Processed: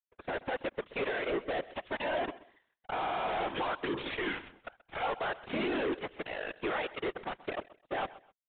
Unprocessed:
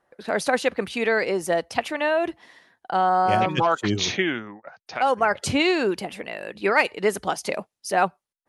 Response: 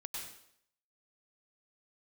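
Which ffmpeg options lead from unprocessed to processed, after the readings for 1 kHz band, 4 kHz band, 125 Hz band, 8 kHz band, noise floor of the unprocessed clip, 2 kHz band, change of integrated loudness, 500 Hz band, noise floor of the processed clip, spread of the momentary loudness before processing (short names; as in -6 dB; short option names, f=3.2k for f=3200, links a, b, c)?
-13.0 dB, -12.0 dB, -15.5 dB, under -40 dB, -85 dBFS, -11.5 dB, -12.0 dB, -11.5 dB, -82 dBFS, 11 LU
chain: -filter_complex "[0:a]deesser=0.8,highpass=f=290:w=0.5412,highpass=f=290:w=1.3066,aemphasis=mode=reproduction:type=50fm,asplit=2[a][b];[b]acompressor=threshold=-29dB:ratio=6,volume=1dB[c];[a][c]amix=inputs=2:normalize=0,alimiter=limit=-16dB:level=0:latency=1:release=107,aresample=11025,aeval=exprs='sgn(val(0))*max(abs(val(0))-0.00211,0)':c=same,aresample=44100,aeval=exprs='0.168*(cos(1*acos(clip(val(0)/0.168,-1,1)))-cos(1*PI/2))+0.0299*(cos(7*acos(clip(val(0)/0.168,-1,1)))-cos(7*PI/2))+0.00422*(cos(8*acos(clip(val(0)/0.168,-1,1)))-cos(8*PI/2))':c=same,afftfilt=real='hypot(re,im)*cos(2*PI*random(0))':imag='hypot(re,im)*sin(2*PI*random(1))':win_size=512:overlap=0.75,aecho=1:1:129|258:0.0944|0.0227,asoftclip=type=tanh:threshold=-27dB,aresample=8000,aresample=44100"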